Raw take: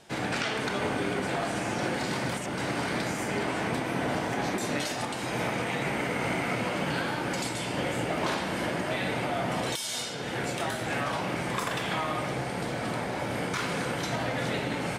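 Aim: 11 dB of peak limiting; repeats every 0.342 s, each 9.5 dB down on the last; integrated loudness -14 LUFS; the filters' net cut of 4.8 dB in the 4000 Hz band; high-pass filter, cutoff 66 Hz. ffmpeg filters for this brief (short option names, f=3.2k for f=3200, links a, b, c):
-af "highpass=66,equalizer=f=4k:t=o:g=-6.5,alimiter=level_in=3.5dB:limit=-24dB:level=0:latency=1,volume=-3.5dB,aecho=1:1:342|684|1026|1368:0.335|0.111|0.0365|0.012,volume=21.5dB"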